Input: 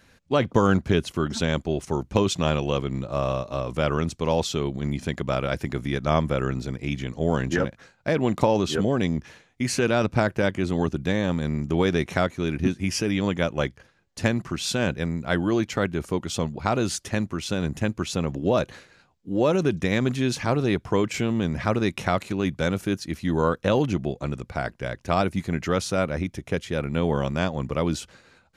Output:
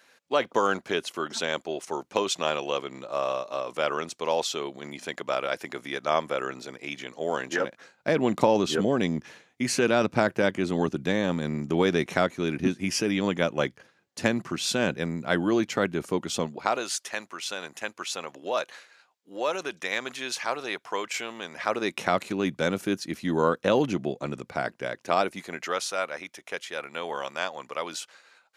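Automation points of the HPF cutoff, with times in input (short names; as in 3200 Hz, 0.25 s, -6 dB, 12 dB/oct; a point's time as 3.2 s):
7.52 s 480 Hz
8.11 s 190 Hz
16.37 s 190 Hz
16.89 s 750 Hz
21.5 s 750 Hz
22.16 s 210 Hz
24.69 s 210 Hz
25.89 s 750 Hz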